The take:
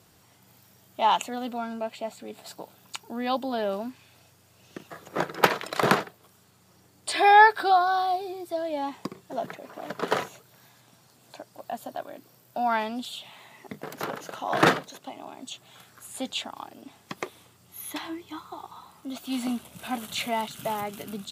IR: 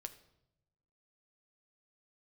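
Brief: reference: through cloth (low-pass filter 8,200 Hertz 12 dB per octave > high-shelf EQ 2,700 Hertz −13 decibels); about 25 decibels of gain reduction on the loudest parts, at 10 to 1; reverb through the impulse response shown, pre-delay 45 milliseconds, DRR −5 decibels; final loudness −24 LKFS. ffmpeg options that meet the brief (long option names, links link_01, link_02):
-filter_complex "[0:a]acompressor=threshold=-37dB:ratio=10,asplit=2[link_01][link_02];[1:a]atrim=start_sample=2205,adelay=45[link_03];[link_02][link_03]afir=irnorm=-1:irlink=0,volume=9.5dB[link_04];[link_01][link_04]amix=inputs=2:normalize=0,lowpass=8200,highshelf=frequency=2700:gain=-13,volume=14dB"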